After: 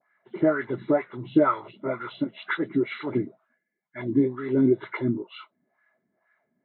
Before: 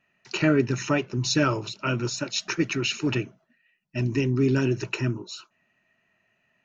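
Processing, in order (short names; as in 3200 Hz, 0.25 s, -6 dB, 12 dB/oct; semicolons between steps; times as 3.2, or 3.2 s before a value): nonlinear frequency compression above 1400 Hz 1.5:1; LFO band-pass sine 2.1 Hz 240–1500 Hz; dispersion highs, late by 44 ms, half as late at 2800 Hz; gain +8 dB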